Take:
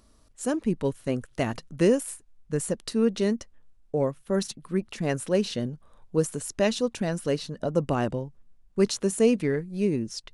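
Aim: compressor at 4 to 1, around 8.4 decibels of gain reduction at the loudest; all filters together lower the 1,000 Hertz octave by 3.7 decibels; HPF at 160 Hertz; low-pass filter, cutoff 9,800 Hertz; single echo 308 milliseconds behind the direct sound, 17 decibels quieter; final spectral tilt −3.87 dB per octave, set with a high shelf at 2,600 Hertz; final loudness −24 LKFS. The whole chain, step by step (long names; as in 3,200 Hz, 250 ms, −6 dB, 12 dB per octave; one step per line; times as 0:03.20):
high-pass filter 160 Hz
low-pass filter 9,800 Hz
parametric band 1,000 Hz −6.5 dB
high-shelf EQ 2,600 Hz +7.5 dB
downward compressor 4 to 1, threshold −27 dBFS
single-tap delay 308 ms −17 dB
level +8.5 dB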